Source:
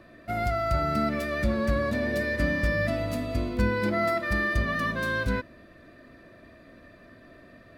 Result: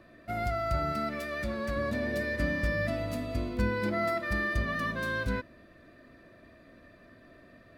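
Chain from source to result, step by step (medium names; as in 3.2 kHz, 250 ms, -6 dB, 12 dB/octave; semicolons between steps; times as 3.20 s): 0.92–1.77 s: bass shelf 390 Hz -6.5 dB; trim -4 dB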